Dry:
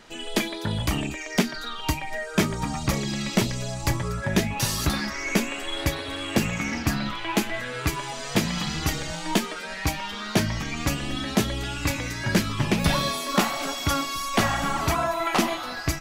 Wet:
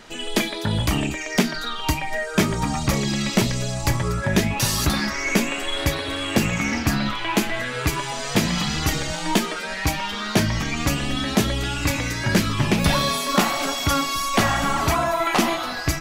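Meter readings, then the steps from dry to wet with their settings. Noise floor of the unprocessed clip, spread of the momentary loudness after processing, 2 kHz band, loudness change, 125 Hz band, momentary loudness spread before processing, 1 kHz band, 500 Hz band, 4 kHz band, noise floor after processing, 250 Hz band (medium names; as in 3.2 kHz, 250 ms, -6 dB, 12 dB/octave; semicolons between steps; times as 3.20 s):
-35 dBFS, 4 LU, +4.0 dB, +4.0 dB, +4.0 dB, 5 LU, +4.0 dB, +3.5 dB, +4.0 dB, -30 dBFS, +3.5 dB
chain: de-hum 166.2 Hz, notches 33; in parallel at -1.5 dB: peak limiter -18.5 dBFS, peak gain reduction 7.5 dB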